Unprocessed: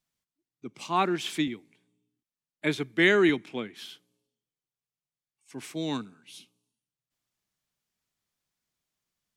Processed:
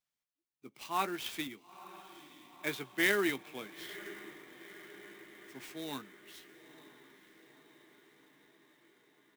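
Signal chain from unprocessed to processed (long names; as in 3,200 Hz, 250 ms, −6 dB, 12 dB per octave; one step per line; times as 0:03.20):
low-shelf EQ 380 Hz −10 dB
double-tracking delay 15 ms −9.5 dB
feedback delay with all-pass diffusion 941 ms, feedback 63%, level −16 dB
converter with an unsteady clock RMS 0.024 ms
level −6 dB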